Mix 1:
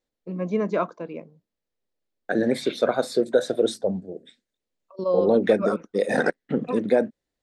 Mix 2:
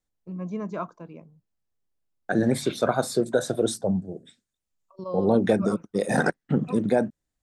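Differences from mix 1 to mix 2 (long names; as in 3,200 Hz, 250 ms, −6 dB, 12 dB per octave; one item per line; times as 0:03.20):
second voice +8.0 dB
master: add graphic EQ with 10 bands 125 Hz +4 dB, 250 Hz −6 dB, 500 Hz −11 dB, 2,000 Hz −10 dB, 4,000 Hz −8 dB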